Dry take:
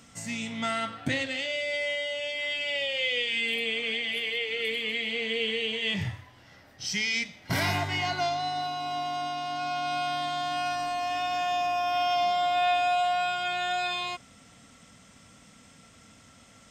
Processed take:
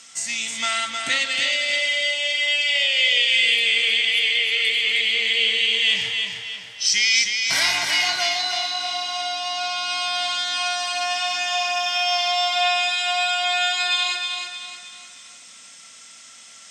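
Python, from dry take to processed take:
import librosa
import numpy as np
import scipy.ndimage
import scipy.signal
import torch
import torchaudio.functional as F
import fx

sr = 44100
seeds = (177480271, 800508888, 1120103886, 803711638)

y = fx.weighting(x, sr, curve='ITU-R 468')
y = fx.echo_feedback(y, sr, ms=312, feedback_pct=41, wet_db=-5.0)
y = y * librosa.db_to_amplitude(2.0)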